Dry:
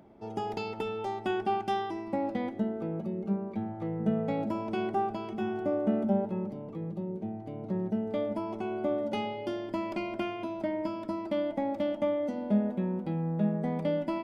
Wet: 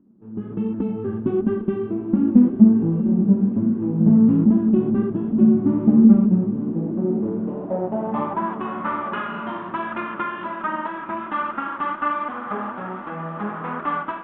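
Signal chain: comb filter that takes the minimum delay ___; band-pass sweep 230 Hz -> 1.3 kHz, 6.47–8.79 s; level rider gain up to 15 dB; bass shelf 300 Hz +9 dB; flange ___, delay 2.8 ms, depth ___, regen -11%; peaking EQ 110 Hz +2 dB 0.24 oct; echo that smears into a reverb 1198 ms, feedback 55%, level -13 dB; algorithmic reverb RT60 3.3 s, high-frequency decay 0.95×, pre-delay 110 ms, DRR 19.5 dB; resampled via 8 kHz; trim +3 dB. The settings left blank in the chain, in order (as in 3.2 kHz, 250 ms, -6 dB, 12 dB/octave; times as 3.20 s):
0.67 ms, 1.3 Hz, 6.6 ms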